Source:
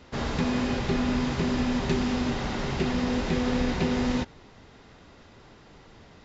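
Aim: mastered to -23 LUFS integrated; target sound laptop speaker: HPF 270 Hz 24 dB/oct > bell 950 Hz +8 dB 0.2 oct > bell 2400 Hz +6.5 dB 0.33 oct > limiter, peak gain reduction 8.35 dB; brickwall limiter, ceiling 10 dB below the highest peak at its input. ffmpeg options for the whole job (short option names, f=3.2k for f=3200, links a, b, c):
-af "alimiter=limit=-23dB:level=0:latency=1,highpass=f=270:w=0.5412,highpass=f=270:w=1.3066,equalizer=f=950:t=o:w=0.2:g=8,equalizer=f=2.4k:t=o:w=0.33:g=6.5,volume=15dB,alimiter=limit=-14.5dB:level=0:latency=1"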